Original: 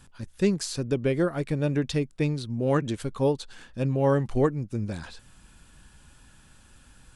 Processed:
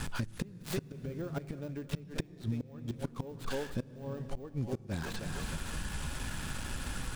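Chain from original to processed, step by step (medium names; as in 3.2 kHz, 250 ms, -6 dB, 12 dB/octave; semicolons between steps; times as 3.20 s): dead-time distortion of 0.12 ms; treble shelf 9.2 kHz -2 dB; thinning echo 316 ms, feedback 29%, high-pass 320 Hz, level -15.5 dB; de-esser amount 80%; inverted gate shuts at -21 dBFS, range -32 dB; on a send at -17.5 dB: peaking EQ 160 Hz +10.5 dB 0.36 oct + reverberation RT60 1.8 s, pre-delay 3 ms; on the sum: compression 16:1, threshold -50 dBFS, peak gain reduction 24 dB; trim +18 dB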